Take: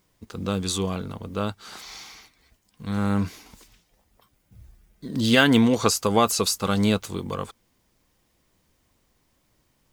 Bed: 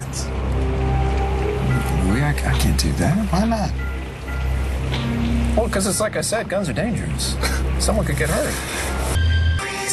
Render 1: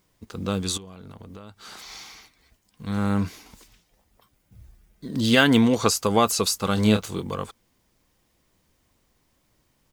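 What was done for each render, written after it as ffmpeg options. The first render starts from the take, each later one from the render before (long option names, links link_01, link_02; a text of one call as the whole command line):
ffmpeg -i in.wav -filter_complex "[0:a]asettb=1/sr,asplit=3[link_01][link_02][link_03];[link_01]atrim=end=0.774[link_04];[link_02]atrim=start=0.77:end=1.9,asetpts=PTS-STARTPTS,afade=type=in:duration=0.004:curve=qsin,afade=type=out:start_time=1.126:duration=0.004:curve=qsin,acompressor=threshold=-37dB:ratio=16:attack=3.2:release=140:knee=1:detection=peak[link_05];[link_03]atrim=start=1.896[link_06];[link_04][link_05]acrossfade=duration=0.004:curve1=hsin:curve2=qsin[link_07];[link_07][link_06]acrossfade=duration=0.004:curve1=qsin:curve2=hsin,asplit=3[link_08][link_09][link_10];[link_08]afade=type=out:start_time=6.76:duration=0.02[link_11];[link_09]asplit=2[link_12][link_13];[link_13]adelay=28,volume=-6dB[link_14];[link_12][link_14]amix=inputs=2:normalize=0,afade=type=in:start_time=6.76:duration=0.02,afade=type=out:start_time=7.21:duration=0.02[link_15];[link_10]afade=type=in:start_time=7.21:duration=0.02[link_16];[link_11][link_15][link_16]amix=inputs=3:normalize=0" out.wav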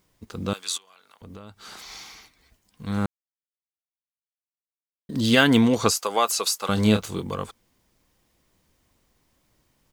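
ffmpeg -i in.wav -filter_complex "[0:a]asettb=1/sr,asplit=3[link_01][link_02][link_03];[link_01]atrim=end=0.534[link_04];[link_02]atrim=start=0.53:end=1.22,asetpts=PTS-STARTPTS,afade=type=in:duration=0.004:curve=qsin,afade=type=out:start_time=0.686:duration=0.004:curve=qsin,highpass=1200[link_05];[link_03]atrim=start=1.216[link_06];[link_04][link_05]acrossfade=duration=0.004:curve1=hsin:curve2=qsin[link_07];[link_07][link_06]acrossfade=duration=0.004:curve1=qsin:curve2=hsin,asettb=1/sr,asplit=3[link_08][link_09][link_10];[link_08]atrim=end=5.924[link_11];[link_09]atrim=start=5.92:end=6.69,asetpts=PTS-STARTPTS,afade=type=in:duration=0.004:curve=qsin,afade=type=out:start_time=0.766:duration=0.004:curve=qsin,highpass=550[link_12];[link_10]atrim=start=6.686[link_13];[link_11][link_12]acrossfade=duration=0.004:curve1=hsin:curve2=qsin[link_14];[link_14][link_13]acrossfade=duration=0.004:curve1=qsin:curve2=hsin,asplit=3[link_15][link_16][link_17];[link_15]atrim=end=3.06,asetpts=PTS-STARTPTS,afade=type=out:start_time=3.056:duration=0.004:curve=hsin[link_18];[link_16]atrim=start=3.06:end=5.09,asetpts=PTS-STARTPTS,volume=0[link_19];[link_17]atrim=start=5.09,asetpts=PTS-STARTPTS,afade=type=in:duration=0.004:curve=hsin[link_20];[link_18][link_19][link_20]concat=n=3:v=0:a=1" out.wav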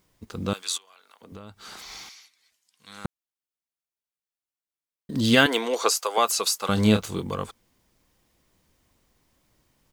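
ffmpeg -i in.wav -filter_complex "[0:a]asettb=1/sr,asplit=3[link_01][link_02][link_03];[link_01]atrim=end=0.624[link_04];[link_02]atrim=start=0.62:end=1.32,asetpts=PTS-STARTPTS,afade=type=in:duration=0.004:curve=qsin,afade=type=out:start_time=0.696:duration=0.004:curve=qsin,highpass=280[link_05];[link_03]atrim=start=1.316[link_06];[link_04][link_05]acrossfade=duration=0.004:curve1=hsin:curve2=qsin[link_07];[link_07][link_06]acrossfade=duration=0.004:curve1=qsin:curve2=hsin,asettb=1/sr,asplit=3[link_08][link_09][link_10];[link_08]atrim=end=2.094[link_11];[link_09]atrim=start=2.09:end=3.05,asetpts=PTS-STARTPTS,afade=type=in:duration=0.004:curve=qsin,afade=type=out:start_time=0.956:duration=0.004:curve=qsin,bandpass=frequency=6200:width_type=q:width=0.55[link_12];[link_10]atrim=start=3.046[link_13];[link_11][link_12]acrossfade=duration=0.004:curve1=hsin:curve2=qsin[link_14];[link_14][link_13]acrossfade=duration=0.004:curve1=qsin:curve2=hsin,asettb=1/sr,asplit=3[link_15][link_16][link_17];[link_15]atrim=end=5.464[link_18];[link_16]atrim=start=5.46:end=6.18,asetpts=PTS-STARTPTS,afade=type=in:duration=0.004:curve=qsin,afade=type=out:start_time=0.716:duration=0.004:curve=qsin,highpass=frequency=390:width=0.5412,highpass=frequency=390:width=1.3066[link_19];[link_17]atrim=start=6.176[link_20];[link_18][link_19]acrossfade=duration=0.004:curve1=hsin:curve2=qsin[link_21];[link_21][link_20]acrossfade=duration=0.004:curve1=qsin:curve2=hsin" out.wav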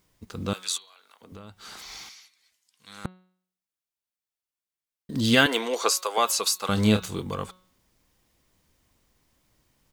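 ffmpeg -i in.wav -af "equalizer=frequency=440:width=0.37:gain=-2,bandreject=frequency=183.8:width_type=h:width=4,bandreject=frequency=367.6:width_type=h:width=4,bandreject=frequency=551.4:width_type=h:width=4,bandreject=frequency=735.2:width_type=h:width=4,bandreject=frequency=919:width_type=h:width=4,bandreject=frequency=1102.8:width_type=h:width=4,bandreject=frequency=1286.6:width_type=h:width=4,bandreject=frequency=1470.4:width_type=h:width=4,bandreject=frequency=1654.2:width_type=h:width=4,bandreject=frequency=1838:width_type=h:width=4,bandreject=frequency=2021.8:width_type=h:width=4,bandreject=frequency=2205.6:width_type=h:width=4,bandreject=frequency=2389.4:width_type=h:width=4,bandreject=frequency=2573.2:width_type=h:width=4,bandreject=frequency=2757:width_type=h:width=4,bandreject=frequency=2940.8:width_type=h:width=4,bandreject=frequency=3124.6:width_type=h:width=4,bandreject=frequency=3308.4:width_type=h:width=4,bandreject=frequency=3492.2:width_type=h:width=4,bandreject=frequency=3676:width_type=h:width=4,bandreject=frequency=3859.8:width_type=h:width=4,bandreject=frequency=4043.6:width_type=h:width=4,bandreject=frequency=4227.4:width_type=h:width=4,bandreject=frequency=4411.2:width_type=h:width=4" out.wav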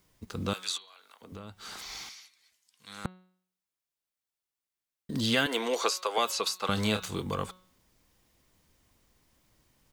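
ffmpeg -i in.wav -filter_complex "[0:a]acrossover=split=570|1700|4900[link_01][link_02][link_03][link_04];[link_01]acompressor=threshold=-30dB:ratio=4[link_05];[link_02]acompressor=threshold=-31dB:ratio=4[link_06];[link_03]acompressor=threshold=-30dB:ratio=4[link_07];[link_04]acompressor=threshold=-41dB:ratio=4[link_08];[link_05][link_06][link_07][link_08]amix=inputs=4:normalize=0" out.wav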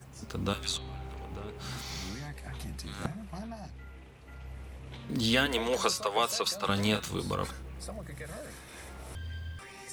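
ffmpeg -i in.wav -i bed.wav -filter_complex "[1:a]volume=-22.5dB[link_01];[0:a][link_01]amix=inputs=2:normalize=0" out.wav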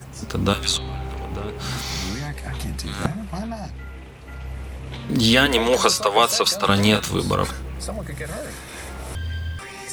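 ffmpeg -i in.wav -af "volume=11.5dB,alimiter=limit=-2dB:level=0:latency=1" out.wav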